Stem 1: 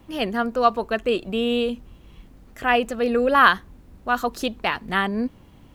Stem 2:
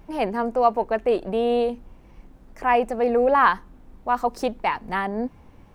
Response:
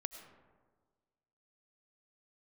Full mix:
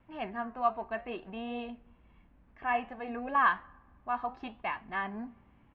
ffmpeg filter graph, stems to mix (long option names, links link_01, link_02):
-filter_complex "[0:a]volume=-12.5dB,asplit=2[link_01][link_02];[link_02]volume=-16.5dB[link_03];[1:a]highpass=950,flanger=delay=3.1:depth=4.4:regen=-82:speed=1.3:shape=sinusoidal,aeval=exprs='val(0)+0.000794*(sin(2*PI*60*n/s)+sin(2*PI*2*60*n/s)/2+sin(2*PI*3*60*n/s)/3+sin(2*PI*4*60*n/s)/4+sin(2*PI*5*60*n/s)/5)':channel_layout=same,adelay=2.2,volume=-1dB,asplit=2[link_04][link_05];[link_05]volume=-18dB[link_06];[2:a]atrim=start_sample=2205[link_07];[link_03][link_06]amix=inputs=2:normalize=0[link_08];[link_08][link_07]afir=irnorm=-1:irlink=0[link_09];[link_01][link_04][link_09]amix=inputs=3:normalize=0,lowpass=frequency=2800:width=0.5412,lowpass=frequency=2800:width=1.3066,flanger=delay=7.7:depth=7.5:regen=-76:speed=0.6:shape=triangular"